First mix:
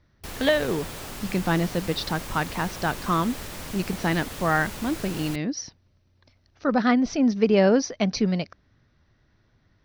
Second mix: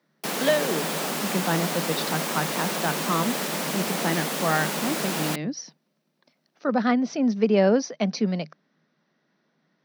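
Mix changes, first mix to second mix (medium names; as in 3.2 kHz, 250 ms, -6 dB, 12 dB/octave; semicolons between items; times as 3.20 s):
background +12.0 dB; master: add rippled Chebyshev high-pass 150 Hz, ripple 3 dB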